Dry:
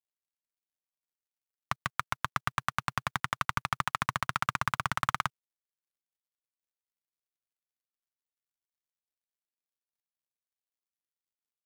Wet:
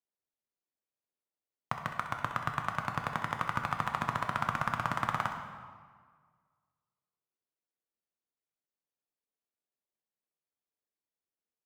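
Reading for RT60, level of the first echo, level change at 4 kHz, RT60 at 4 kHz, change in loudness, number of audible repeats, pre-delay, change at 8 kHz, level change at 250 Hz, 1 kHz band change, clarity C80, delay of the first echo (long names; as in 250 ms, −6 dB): 1.7 s, −10.5 dB, −6.5 dB, 1.2 s, −1.5 dB, 1, 7 ms, −8.5 dB, +2.5 dB, −0.5 dB, 7.0 dB, 64 ms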